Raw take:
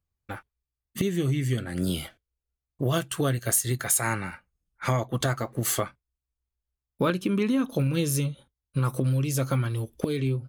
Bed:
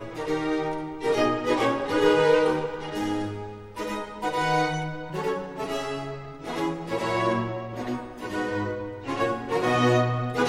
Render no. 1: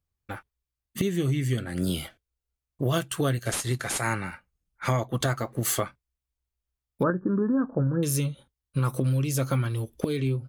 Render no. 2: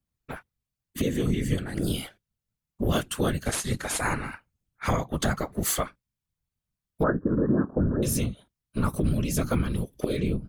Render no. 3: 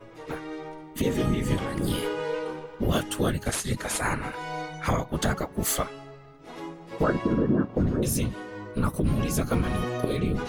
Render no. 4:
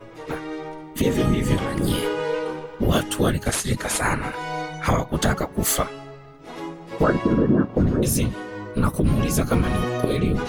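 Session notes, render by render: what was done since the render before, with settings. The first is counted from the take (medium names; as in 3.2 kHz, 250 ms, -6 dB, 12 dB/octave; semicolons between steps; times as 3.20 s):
3.45–4.01 s: CVSD coder 64 kbps; 7.03–8.03 s: brick-wall FIR low-pass 1.8 kHz
whisper effect
add bed -10.5 dB
trim +5 dB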